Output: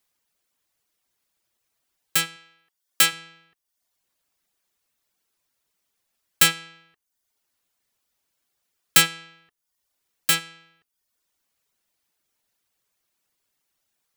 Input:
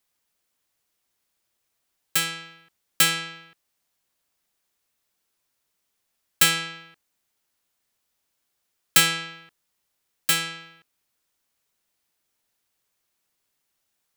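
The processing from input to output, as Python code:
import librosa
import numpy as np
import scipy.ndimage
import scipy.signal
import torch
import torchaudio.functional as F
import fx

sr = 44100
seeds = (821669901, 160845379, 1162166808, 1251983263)

y = fx.dereverb_blind(x, sr, rt60_s=0.66)
y = fx.highpass(y, sr, hz=340.0, slope=6, at=(2.36, 3.13))
y = y * 10.0 ** (1.5 / 20.0)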